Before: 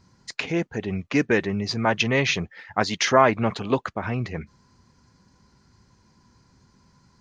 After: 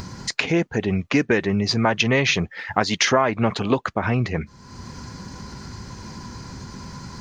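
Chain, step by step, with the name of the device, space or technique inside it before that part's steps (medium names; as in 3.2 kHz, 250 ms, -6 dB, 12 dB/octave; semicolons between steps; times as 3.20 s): upward and downward compression (upward compressor, threshold -28 dBFS; compression 4:1, threshold -22 dBFS, peak gain reduction 10 dB); trim +6.5 dB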